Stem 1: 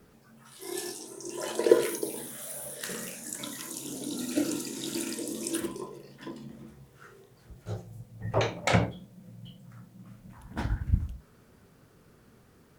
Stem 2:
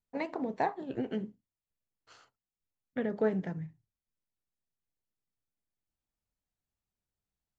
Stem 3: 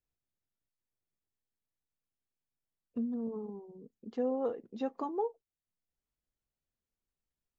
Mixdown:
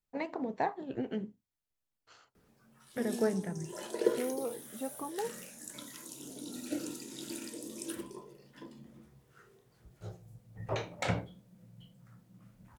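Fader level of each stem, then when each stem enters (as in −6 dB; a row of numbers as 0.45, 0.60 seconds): −8.5, −1.5, −4.0 decibels; 2.35, 0.00, 0.00 seconds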